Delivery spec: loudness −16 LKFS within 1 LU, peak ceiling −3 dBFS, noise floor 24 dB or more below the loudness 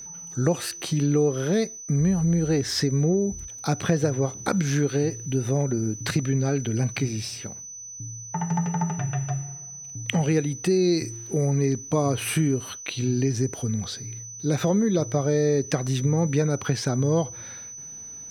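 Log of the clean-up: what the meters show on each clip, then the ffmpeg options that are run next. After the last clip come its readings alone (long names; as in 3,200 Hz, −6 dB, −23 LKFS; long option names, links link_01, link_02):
interfering tone 6,000 Hz; level of the tone −37 dBFS; integrated loudness −25.0 LKFS; sample peak −6.5 dBFS; target loudness −16.0 LKFS
→ -af "bandreject=frequency=6000:width=30"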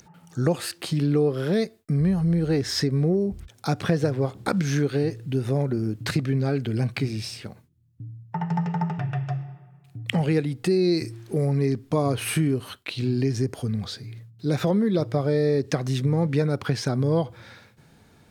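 interfering tone none found; integrated loudness −25.0 LKFS; sample peak −7.0 dBFS; target loudness −16.0 LKFS
→ -af "volume=9dB,alimiter=limit=-3dB:level=0:latency=1"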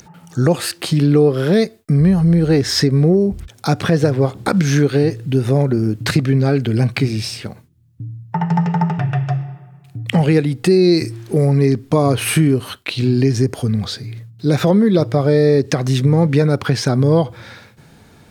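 integrated loudness −16.0 LKFS; sample peak −3.0 dBFS; background noise floor −48 dBFS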